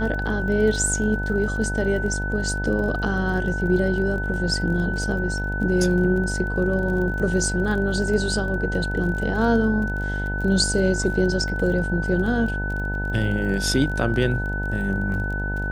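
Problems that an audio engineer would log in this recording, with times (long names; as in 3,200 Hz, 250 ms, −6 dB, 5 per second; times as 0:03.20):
mains buzz 50 Hz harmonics 19 −27 dBFS
surface crackle 33 per second −31 dBFS
whistle 1,500 Hz −28 dBFS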